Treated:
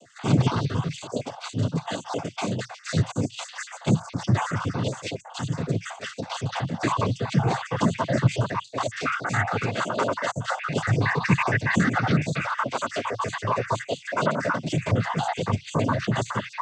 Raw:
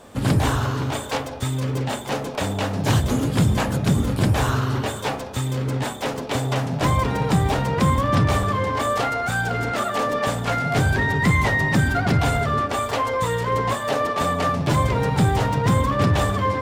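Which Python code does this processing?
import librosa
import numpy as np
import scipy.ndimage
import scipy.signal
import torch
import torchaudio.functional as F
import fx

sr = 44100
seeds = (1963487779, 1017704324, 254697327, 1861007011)

y = fx.spec_dropout(x, sr, seeds[0], share_pct=54)
y = fx.noise_vocoder(y, sr, seeds[1], bands=16)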